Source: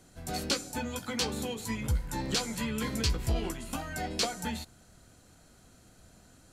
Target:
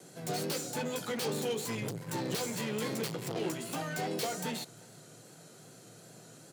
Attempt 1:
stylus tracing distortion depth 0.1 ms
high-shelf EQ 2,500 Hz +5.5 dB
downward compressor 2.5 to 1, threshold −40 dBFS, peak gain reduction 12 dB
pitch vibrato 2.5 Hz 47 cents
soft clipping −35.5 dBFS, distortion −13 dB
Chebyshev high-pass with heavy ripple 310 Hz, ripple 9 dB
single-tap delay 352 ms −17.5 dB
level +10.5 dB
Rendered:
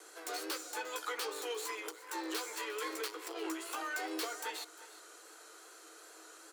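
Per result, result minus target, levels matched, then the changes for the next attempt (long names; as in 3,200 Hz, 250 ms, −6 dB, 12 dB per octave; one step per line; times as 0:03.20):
downward compressor: peak gain reduction +12 dB; echo-to-direct +10.5 dB; 250 Hz band −4.0 dB
change: single-tap delay 352 ms −28 dB
remove: downward compressor 2.5 to 1, threshold −40 dBFS, peak gain reduction 12 dB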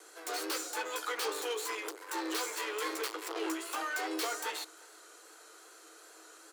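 250 Hz band −4.5 dB
change: Chebyshev high-pass with heavy ripple 110 Hz, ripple 9 dB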